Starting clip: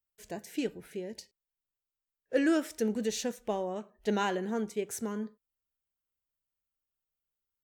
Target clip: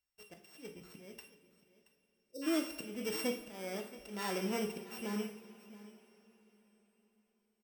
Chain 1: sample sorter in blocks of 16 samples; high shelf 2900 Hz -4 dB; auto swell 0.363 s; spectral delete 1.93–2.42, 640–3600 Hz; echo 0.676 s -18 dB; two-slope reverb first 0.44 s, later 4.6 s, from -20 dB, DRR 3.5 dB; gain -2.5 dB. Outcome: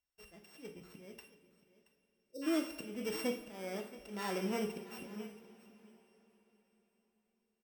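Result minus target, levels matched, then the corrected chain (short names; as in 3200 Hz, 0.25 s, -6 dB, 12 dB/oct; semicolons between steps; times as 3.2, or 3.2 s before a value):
8000 Hz band -2.5 dB
sample sorter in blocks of 16 samples; auto swell 0.363 s; spectral delete 1.93–2.42, 640–3600 Hz; echo 0.676 s -18 dB; two-slope reverb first 0.44 s, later 4.6 s, from -20 dB, DRR 3.5 dB; gain -2.5 dB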